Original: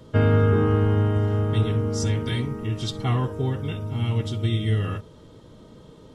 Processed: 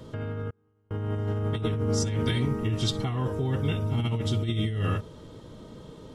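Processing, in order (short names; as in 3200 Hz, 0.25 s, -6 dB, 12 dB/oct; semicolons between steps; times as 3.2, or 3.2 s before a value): negative-ratio compressor -26 dBFS, ratio -1; 0.5–0.91 flipped gate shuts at -29 dBFS, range -37 dB; gain -1.5 dB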